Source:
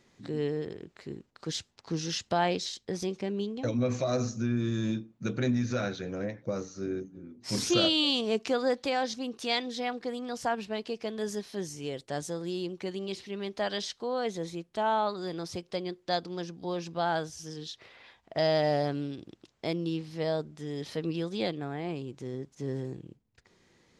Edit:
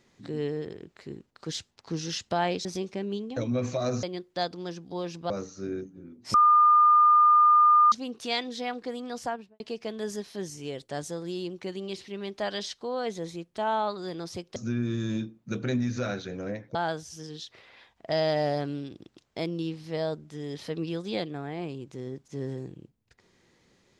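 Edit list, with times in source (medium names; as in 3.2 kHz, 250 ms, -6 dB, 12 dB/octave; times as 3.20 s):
2.65–2.92 s: delete
4.30–6.49 s: swap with 15.75–17.02 s
7.53–9.11 s: bleep 1.21 kHz -15 dBFS
10.37–10.79 s: studio fade out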